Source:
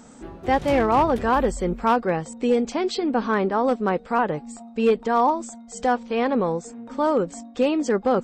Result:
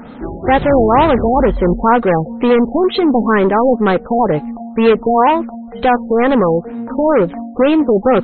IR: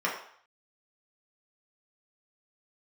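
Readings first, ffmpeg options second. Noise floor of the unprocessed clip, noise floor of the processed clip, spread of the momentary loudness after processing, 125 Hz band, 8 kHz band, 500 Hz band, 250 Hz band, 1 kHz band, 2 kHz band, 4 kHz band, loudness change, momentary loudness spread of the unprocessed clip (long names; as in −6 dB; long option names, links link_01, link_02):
−45 dBFS, −32 dBFS, 7 LU, +11.0 dB, below −40 dB, +9.5 dB, +10.0 dB, +8.0 dB, +8.5 dB, +7.5 dB, +9.0 dB, 10 LU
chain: -af "aeval=exprs='0.266*(cos(1*acos(clip(val(0)/0.266,-1,1)))-cos(1*PI/2))+0.0531*(cos(5*acos(clip(val(0)/0.266,-1,1)))-cos(5*PI/2))':channel_layout=same,afftfilt=real='re*lt(b*sr/1024,860*pow(4300/860,0.5+0.5*sin(2*PI*2.1*pts/sr)))':imag='im*lt(b*sr/1024,860*pow(4300/860,0.5+0.5*sin(2*PI*2.1*pts/sr)))':win_size=1024:overlap=0.75,volume=8dB"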